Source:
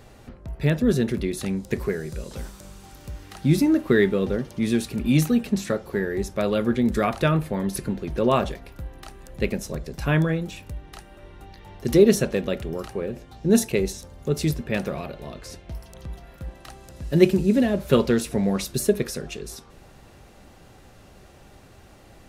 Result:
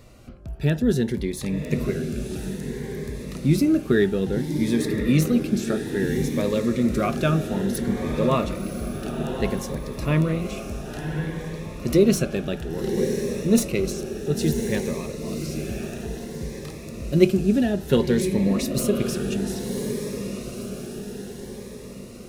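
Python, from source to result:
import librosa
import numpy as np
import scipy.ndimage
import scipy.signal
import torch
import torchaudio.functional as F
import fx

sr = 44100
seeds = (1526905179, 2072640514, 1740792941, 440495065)

y = fx.tracing_dist(x, sr, depth_ms=0.021)
y = fx.echo_diffused(y, sr, ms=1051, feedback_pct=54, wet_db=-6.0)
y = fx.notch_cascade(y, sr, direction='rising', hz=0.59)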